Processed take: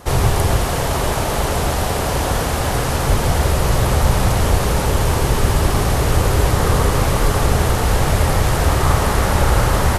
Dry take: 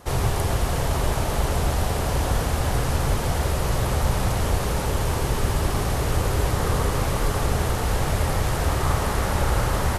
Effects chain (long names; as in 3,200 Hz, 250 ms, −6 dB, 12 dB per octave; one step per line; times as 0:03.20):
0:00.62–0:03.09: low-shelf EQ 140 Hz −6.5 dB
level +7 dB